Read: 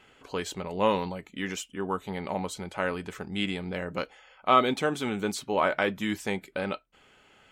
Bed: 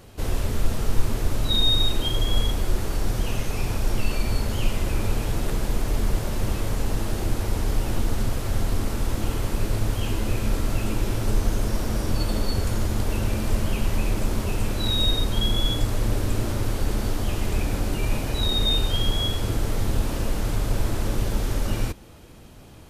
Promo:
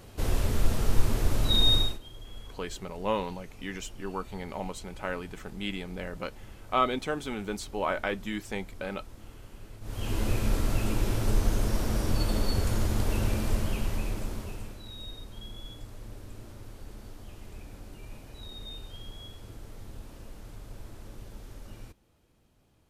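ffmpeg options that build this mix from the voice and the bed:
ffmpeg -i stem1.wav -i stem2.wav -filter_complex "[0:a]adelay=2250,volume=-4.5dB[link_01];[1:a]volume=17.5dB,afade=type=out:start_time=1.74:duration=0.25:silence=0.0944061,afade=type=in:start_time=9.81:duration=0.4:silence=0.105925,afade=type=out:start_time=13.25:duration=1.58:silence=0.133352[link_02];[link_01][link_02]amix=inputs=2:normalize=0" out.wav

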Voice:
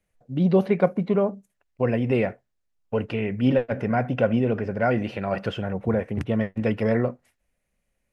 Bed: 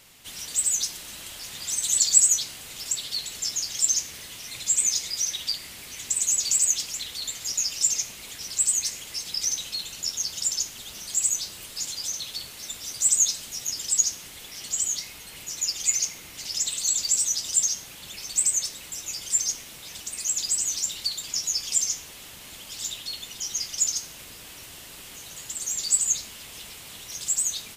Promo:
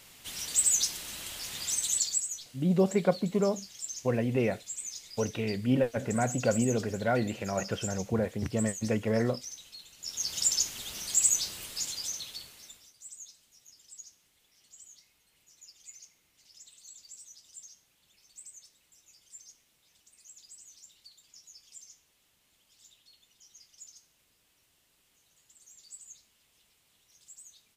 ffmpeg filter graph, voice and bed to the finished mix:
ffmpeg -i stem1.wav -i stem2.wav -filter_complex "[0:a]adelay=2250,volume=-5.5dB[link_01];[1:a]volume=15dB,afade=type=out:start_time=1.6:duration=0.63:silence=0.16788,afade=type=in:start_time=9.99:duration=0.41:silence=0.158489,afade=type=out:start_time=11.46:duration=1.46:silence=0.0501187[link_02];[link_01][link_02]amix=inputs=2:normalize=0" out.wav

